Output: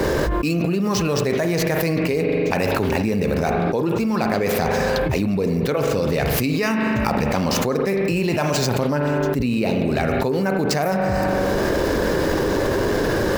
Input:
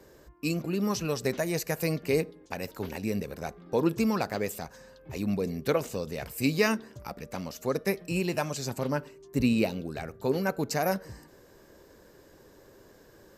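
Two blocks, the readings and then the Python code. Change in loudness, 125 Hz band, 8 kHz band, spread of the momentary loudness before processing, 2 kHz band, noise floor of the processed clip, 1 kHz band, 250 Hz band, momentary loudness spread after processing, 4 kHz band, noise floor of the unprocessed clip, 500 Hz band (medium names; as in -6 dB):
+9.5 dB, +12.0 dB, +8.5 dB, 12 LU, +11.0 dB, -22 dBFS, +12.5 dB, +10.0 dB, 1 LU, +10.5 dB, -56 dBFS, +11.0 dB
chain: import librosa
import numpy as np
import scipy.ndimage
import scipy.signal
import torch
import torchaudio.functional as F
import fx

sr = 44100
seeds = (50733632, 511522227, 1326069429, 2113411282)

y = scipy.ndimage.median_filter(x, 5, mode='constant')
y = fx.rev_spring(y, sr, rt60_s=1.2, pass_ms=(41,), chirp_ms=65, drr_db=8.5)
y = fx.env_flatten(y, sr, amount_pct=100)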